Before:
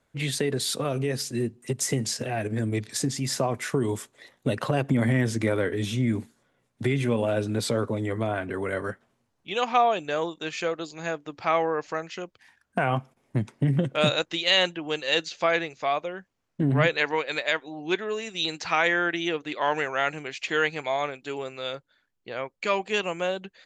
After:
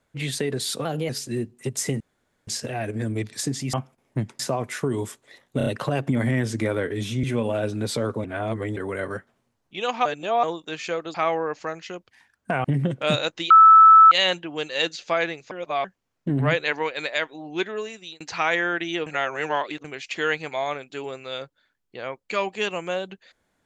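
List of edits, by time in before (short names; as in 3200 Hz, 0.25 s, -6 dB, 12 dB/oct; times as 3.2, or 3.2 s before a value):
0.85–1.13 speed 115%
2.04 insert room tone 0.47 s
4.48 stutter 0.03 s, 4 plays
6.05–6.97 cut
7.98–8.5 reverse
9.79–10.17 reverse
10.88–11.42 cut
12.92–13.58 move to 3.3
14.44 add tone 1310 Hz -7 dBFS 0.61 s
15.84–16.17 reverse
18.11–18.53 fade out
19.39–20.17 reverse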